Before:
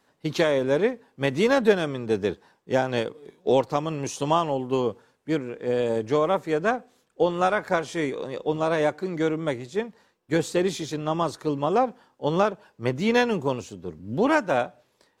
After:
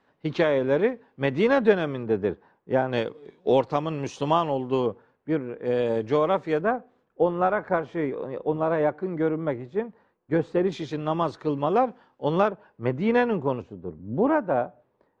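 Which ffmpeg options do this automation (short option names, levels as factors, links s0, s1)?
-af "asetnsamples=n=441:p=0,asendcmd='2.03 lowpass f 1700;2.93 lowpass f 3800;4.86 lowpass f 1800;5.65 lowpass f 3800;6.61 lowpass f 1500;10.72 lowpass f 3200;12.48 lowpass f 1900;13.62 lowpass f 1100',lowpass=2800"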